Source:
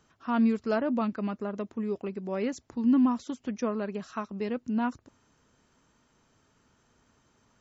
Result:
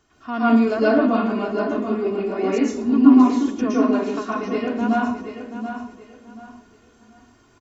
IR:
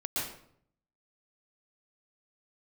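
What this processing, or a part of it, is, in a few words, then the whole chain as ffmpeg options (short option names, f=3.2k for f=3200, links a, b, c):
microphone above a desk: -filter_complex "[0:a]aecho=1:1:2.8:0.52,aecho=1:1:732|1464|2196:0.335|0.0938|0.0263[a];[1:a]atrim=start_sample=2205[b];[a][b]afir=irnorm=-1:irlink=0,volume=3.5dB"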